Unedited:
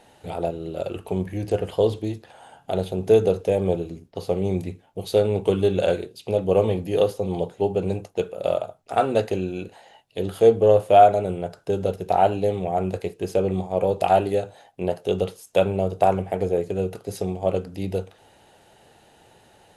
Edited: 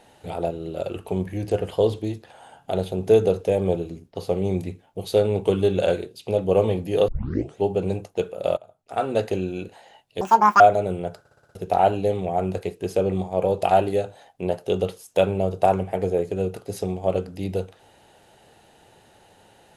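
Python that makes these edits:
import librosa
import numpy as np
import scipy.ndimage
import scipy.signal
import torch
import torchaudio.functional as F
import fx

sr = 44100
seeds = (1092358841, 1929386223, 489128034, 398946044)

y = fx.edit(x, sr, fx.tape_start(start_s=7.08, length_s=0.49),
    fx.fade_in_from(start_s=8.57, length_s=0.74, floor_db=-22.5),
    fx.speed_span(start_s=10.21, length_s=0.78, speed=1.99),
    fx.stutter_over(start_s=11.58, slice_s=0.06, count=6), tone=tone)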